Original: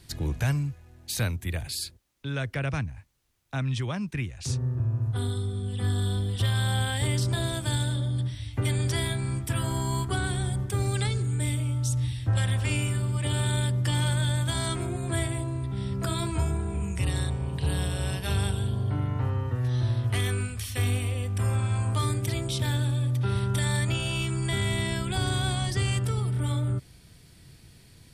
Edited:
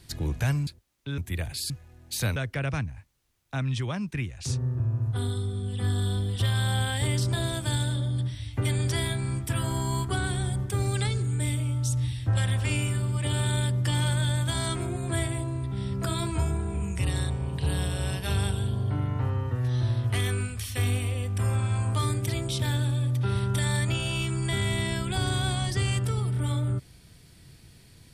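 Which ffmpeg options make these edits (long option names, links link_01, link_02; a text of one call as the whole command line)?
ffmpeg -i in.wav -filter_complex "[0:a]asplit=5[link_01][link_02][link_03][link_04][link_05];[link_01]atrim=end=0.672[link_06];[link_02]atrim=start=1.848:end=2.362[link_07];[link_03]atrim=start=1.328:end=1.852[link_08];[link_04]atrim=start=0.668:end=1.332[link_09];[link_05]atrim=start=2.358[link_10];[link_06][link_07]acrossfade=duration=0.004:curve1=hsin:curve2=hsin[link_11];[link_11][link_08]acrossfade=duration=0.004:curve1=hsin:curve2=hsin[link_12];[link_12][link_09]acrossfade=duration=0.004:curve1=hsin:curve2=hsin[link_13];[link_13][link_10]acrossfade=duration=0.004:curve1=hsin:curve2=hsin" out.wav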